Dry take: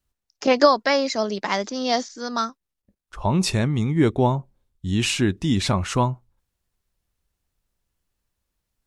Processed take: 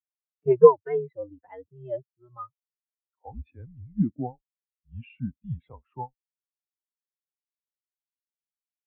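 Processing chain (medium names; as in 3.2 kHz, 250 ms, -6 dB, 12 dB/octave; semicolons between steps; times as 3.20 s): mistuned SSB -120 Hz 210–3500 Hz; spectral contrast expander 2.5:1; trim +2.5 dB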